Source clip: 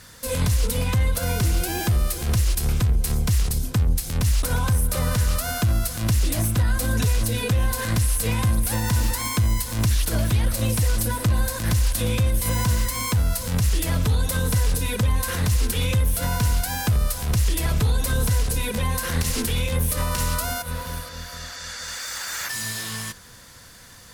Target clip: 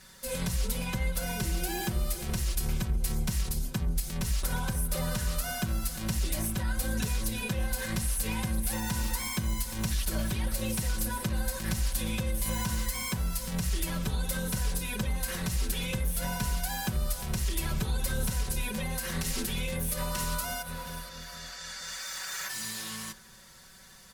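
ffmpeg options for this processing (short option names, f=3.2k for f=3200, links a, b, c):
-af "aecho=1:1:5.3:0.86,bandreject=f=45.21:t=h:w=4,bandreject=f=90.42:t=h:w=4,bandreject=f=135.63:t=h:w=4,bandreject=f=180.84:t=h:w=4,bandreject=f=226.05:t=h:w=4,bandreject=f=271.26:t=h:w=4,bandreject=f=316.47:t=h:w=4,bandreject=f=361.68:t=h:w=4,bandreject=f=406.89:t=h:w=4,bandreject=f=452.1:t=h:w=4,bandreject=f=497.31:t=h:w=4,bandreject=f=542.52:t=h:w=4,bandreject=f=587.73:t=h:w=4,bandreject=f=632.94:t=h:w=4,bandreject=f=678.15:t=h:w=4,bandreject=f=723.36:t=h:w=4,bandreject=f=768.57:t=h:w=4,bandreject=f=813.78:t=h:w=4,bandreject=f=858.99:t=h:w=4,bandreject=f=904.2:t=h:w=4,bandreject=f=949.41:t=h:w=4,bandreject=f=994.62:t=h:w=4,bandreject=f=1.03983k:t=h:w=4,bandreject=f=1.08504k:t=h:w=4,bandreject=f=1.13025k:t=h:w=4,bandreject=f=1.17546k:t=h:w=4,bandreject=f=1.22067k:t=h:w=4,bandreject=f=1.26588k:t=h:w=4,bandreject=f=1.31109k:t=h:w=4,bandreject=f=1.3563k:t=h:w=4,bandreject=f=1.40151k:t=h:w=4,bandreject=f=1.44672k:t=h:w=4,bandreject=f=1.49193k:t=h:w=4,bandreject=f=1.53714k:t=h:w=4,bandreject=f=1.58235k:t=h:w=4,bandreject=f=1.62756k:t=h:w=4,volume=-9dB"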